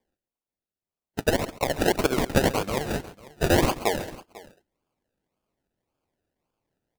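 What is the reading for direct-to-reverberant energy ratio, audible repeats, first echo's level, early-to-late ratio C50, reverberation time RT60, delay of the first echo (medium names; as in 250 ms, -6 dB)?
no reverb, 2, -17.0 dB, no reverb, no reverb, 135 ms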